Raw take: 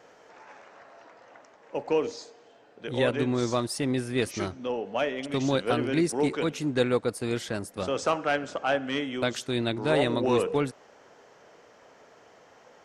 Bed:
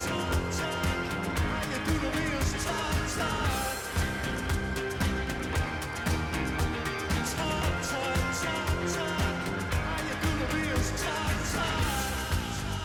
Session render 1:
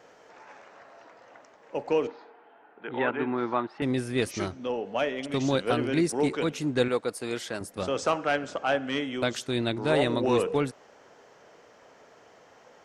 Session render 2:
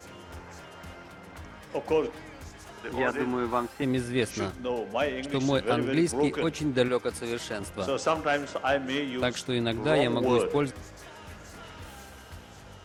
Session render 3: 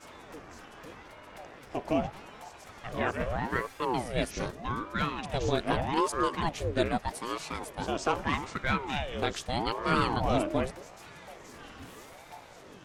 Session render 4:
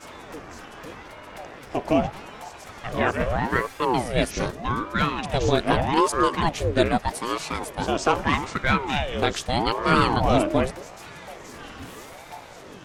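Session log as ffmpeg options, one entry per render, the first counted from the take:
ffmpeg -i in.wav -filter_complex "[0:a]asettb=1/sr,asplit=3[link_01][link_02][link_03];[link_01]atrim=end=2.074[link_04];[link_02]atrim=start=2.07:end=3.82,asetpts=PTS-STARTPTS,afade=type=in:duration=0.004:curve=qsin,afade=type=out:start_time=1.746:duration=0.004:curve=qsin,highpass=240,equalizer=frequency=540:width_type=q:width=4:gain=-8,equalizer=frequency=870:width_type=q:width=4:gain=8,equalizer=frequency=1400:width_type=q:width=4:gain=6,lowpass=frequency=2600:width=0.5412,lowpass=frequency=2600:width=1.3066[link_05];[link_03]atrim=start=3.816[link_06];[link_04][link_05]acrossfade=duration=0.004:curve1=hsin:curve2=qsin[link_07];[link_07][link_06]acrossfade=duration=0.004:curve1=qsin:curve2=hsin,asettb=1/sr,asplit=3[link_08][link_09][link_10];[link_08]atrim=end=6.884[link_11];[link_09]atrim=start=6.88:end=7.61,asetpts=PTS-STARTPTS,afade=type=in:duration=0.004:curve=qsin,afade=type=out:start_time=0.726:duration=0.004:curve=qsin,highpass=frequency=350:poles=1[link_12];[link_10]atrim=start=7.606[link_13];[link_11][link_12]acrossfade=duration=0.004:curve1=hsin:curve2=qsin[link_14];[link_14][link_13]acrossfade=duration=0.004:curve1=qsin:curve2=hsin" out.wav
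ffmpeg -i in.wav -i bed.wav -filter_complex "[1:a]volume=-16dB[link_01];[0:a][link_01]amix=inputs=2:normalize=0" out.wav
ffmpeg -i in.wav -af "aeval=exprs='val(0)*sin(2*PI*470*n/s+470*0.7/0.81*sin(2*PI*0.81*n/s))':channel_layout=same" out.wav
ffmpeg -i in.wav -af "volume=7.5dB" out.wav

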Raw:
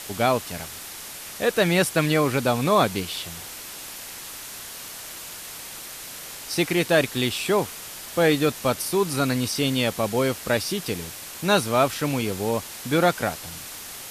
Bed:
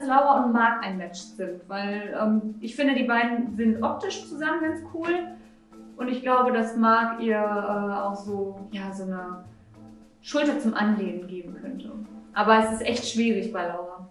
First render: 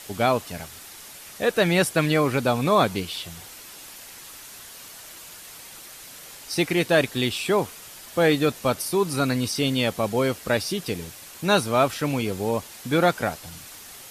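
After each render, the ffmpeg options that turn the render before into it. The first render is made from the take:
ffmpeg -i in.wav -af "afftdn=noise_reduction=6:noise_floor=-38" out.wav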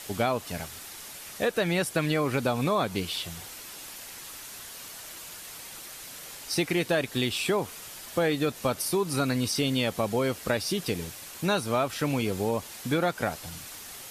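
ffmpeg -i in.wav -af "acompressor=threshold=-23dB:ratio=4" out.wav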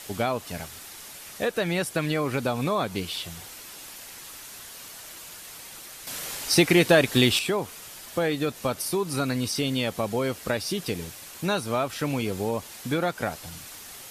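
ffmpeg -i in.wav -filter_complex "[0:a]asplit=3[link_01][link_02][link_03];[link_01]atrim=end=6.072[link_04];[link_02]atrim=start=6.068:end=7.392,asetpts=PTS-STARTPTS,volume=8dB[link_05];[link_03]atrim=start=7.388[link_06];[link_04][link_05]acrossfade=duration=0.004:curve1=hsin:curve2=hsin[link_07];[link_07][link_06]acrossfade=duration=0.004:curve1=hsin:curve2=hsin" out.wav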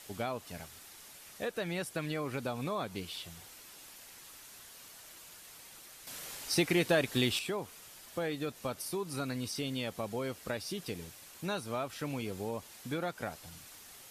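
ffmpeg -i in.wav -af "volume=-10dB" out.wav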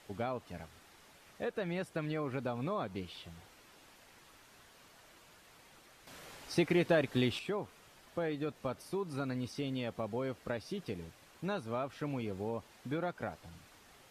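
ffmpeg -i in.wav -af "lowpass=frequency=1700:poles=1" out.wav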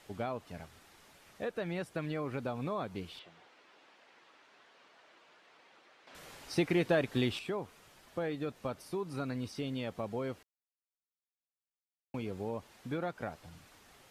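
ffmpeg -i in.wav -filter_complex "[0:a]asettb=1/sr,asplit=3[link_01][link_02][link_03];[link_01]atrim=end=3.194[link_04];[link_02]atrim=start=3.19:end=6.15,asetpts=PTS-STARTPTS,afade=type=in:duration=0.004:curve=qsin,afade=type=out:start_time=2.956:duration=0.004:curve=qsin,highpass=330,lowpass=3700[link_05];[link_03]atrim=start=6.146[link_06];[link_04][link_05]acrossfade=duration=0.004:curve1=hsin:curve2=qsin[link_07];[link_07][link_06]acrossfade=duration=0.004:curve1=qsin:curve2=hsin,asplit=3[link_08][link_09][link_10];[link_08]atrim=end=10.43,asetpts=PTS-STARTPTS,afade=type=out:start_time=10.426:duration=0.004:curve=hsin[link_11];[link_09]atrim=start=10.43:end=12.14,asetpts=PTS-STARTPTS,volume=0[link_12];[link_10]atrim=start=12.14,asetpts=PTS-STARTPTS,afade=type=in:duration=0.004:curve=hsin[link_13];[link_11][link_12][link_13]concat=n=3:v=0:a=1" out.wav

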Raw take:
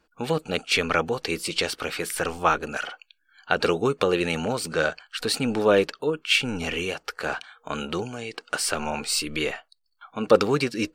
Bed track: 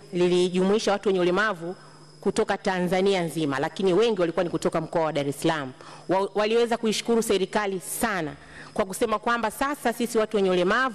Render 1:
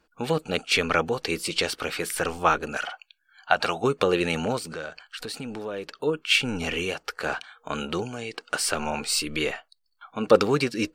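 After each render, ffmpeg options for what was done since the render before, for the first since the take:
ffmpeg -i in.wav -filter_complex "[0:a]asettb=1/sr,asplit=3[link_01][link_02][link_03];[link_01]atrim=end=2.854[link_04];[link_02]atrim=start=2.85:end=3.84,asetpts=PTS-STARTPTS,afade=type=in:duration=0.004:curve=qsin,afade=type=out:start_time=0.986:duration=0.004:curve=qsin,lowshelf=frequency=550:width_type=q:width=3:gain=-6.5[link_05];[link_03]atrim=start=3.836[link_06];[link_04][link_05]acrossfade=duration=0.004:curve1=hsin:curve2=qsin[link_07];[link_07][link_06]acrossfade=duration=0.004:curve1=qsin:curve2=hsin,asettb=1/sr,asplit=3[link_08][link_09][link_10];[link_08]atrim=end=4.584[link_11];[link_09]atrim=start=4.58:end=6.02,asetpts=PTS-STARTPTS,afade=type=in:duration=0.004:curve=qsin,afade=type=out:start_time=1.436:duration=0.004:curve=qsin,acompressor=threshold=-34dB:ratio=3:attack=3.2:release=140:knee=1:detection=peak[link_12];[link_10]atrim=start=6.016[link_13];[link_11][link_12]acrossfade=duration=0.004:curve1=hsin:curve2=qsin[link_14];[link_14][link_13]acrossfade=duration=0.004:curve1=qsin:curve2=hsin" out.wav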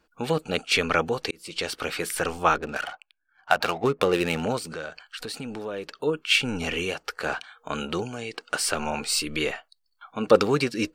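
ffmpeg -i in.wav -filter_complex "[0:a]asettb=1/sr,asplit=3[link_01][link_02][link_03];[link_01]atrim=end=2.554[link_04];[link_02]atrim=start=2.55:end=4.43,asetpts=PTS-STARTPTS,afade=type=in:duration=0.004:curve=qsin,afade=type=out:start_time=1.876:duration=0.004:curve=qsin,adynamicsmooth=sensitivity=6:basefreq=1100[link_05];[link_03]atrim=start=4.426[link_06];[link_04][link_05]acrossfade=duration=0.004:curve1=hsin:curve2=qsin[link_07];[link_07][link_06]acrossfade=duration=0.004:curve1=qsin:curve2=hsin,asplit=2[link_08][link_09];[link_08]atrim=end=1.31,asetpts=PTS-STARTPTS,afade=type=out:start_time=1.306:duration=0.004:curve=hsin[link_10];[link_09]atrim=start=1.31,asetpts=PTS-STARTPTS,afade=type=in:duration=0.5[link_11];[link_10][link_11]concat=n=2:v=0:a=1" out.wav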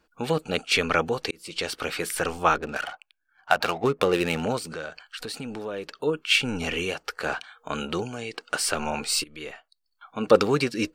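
ffmpeg -i in.wav -filter_complex "[0:a]asplit=2[link_01][link_02];[link_01]atrim=end=9.24,asetpts=PTS-STARTPTS,afade=type=out:start_time=9.236:duration=0.004:curve=hsin:silence=0.105925[link_03];[link_02]atrim=start=9.24,asetpts=PTS-STARTPTS,afade=type=in:duration=1.01:silence=0.105925[link_04];[link_03][link_04]concat=n=2:v=0:a=1" out.wav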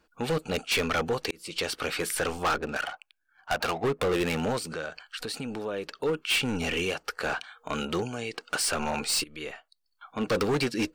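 ffmpeg -i in.wav -af "volume=22dB,asoftclip=hard,volume=-22dB" out.wav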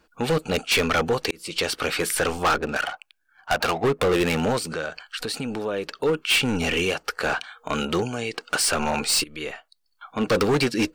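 ffmpeg -i in.wav -af "volume=5.5dB" out.wav

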